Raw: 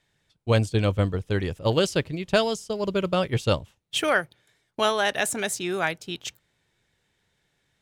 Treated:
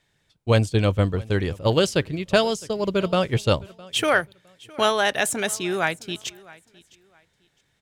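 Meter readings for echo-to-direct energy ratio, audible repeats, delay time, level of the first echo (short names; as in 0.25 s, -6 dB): -22.5 dB, 2, 0.66 s, -22.5 dB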